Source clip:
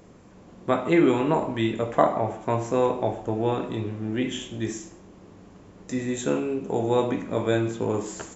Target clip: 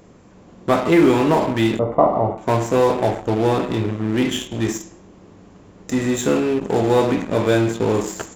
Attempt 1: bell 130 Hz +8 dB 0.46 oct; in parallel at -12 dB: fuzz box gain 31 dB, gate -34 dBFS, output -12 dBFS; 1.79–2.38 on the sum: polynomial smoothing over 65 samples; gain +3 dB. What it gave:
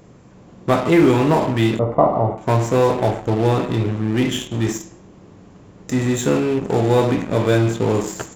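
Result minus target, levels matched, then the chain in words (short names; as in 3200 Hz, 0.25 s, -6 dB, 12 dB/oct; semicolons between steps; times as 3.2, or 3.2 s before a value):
125 Hz band +4.0 dB
in parallel at -12 dB: fuzz box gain 31 dB, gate -34 dBFS, output -12 dBFS; 1.79–2.38 on the sum: polynomial smoothing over 65 samples; gain +3 dB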